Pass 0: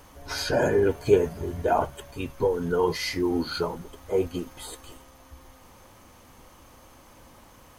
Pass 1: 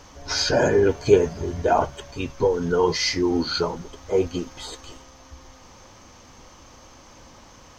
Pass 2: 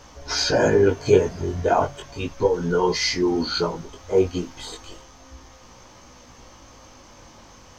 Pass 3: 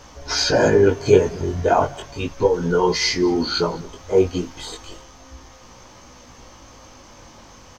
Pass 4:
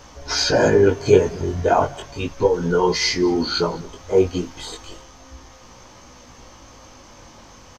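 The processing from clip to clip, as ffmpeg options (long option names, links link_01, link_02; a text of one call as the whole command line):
ffmpeg -i in.wav -af "highshelf=frequency=8000:width_type=q:width=3:gain=-12,volume=3.5dB" out.wav
ffmpeg -i in.wav -af "flanger=delay=16:depth=6:speed=0.33,volume=3.5dB" out.wav
ffmpeg -i in.wav -af "aecho=1:1:203:0.0631,volume=2.5dB" out.wav
ffmpeg -i in.wav -af "aresample=32000,aresample=44100" out.wav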